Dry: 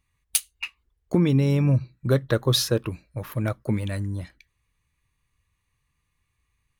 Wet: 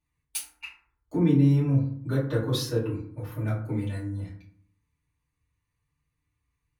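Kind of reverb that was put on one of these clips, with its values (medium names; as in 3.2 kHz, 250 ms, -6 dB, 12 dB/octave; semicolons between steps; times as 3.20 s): FDN reverb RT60 0.58 s, low-frequency decay 1.4×, high-frequency decay 0.45×, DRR -10 dB; trim -16.5 dB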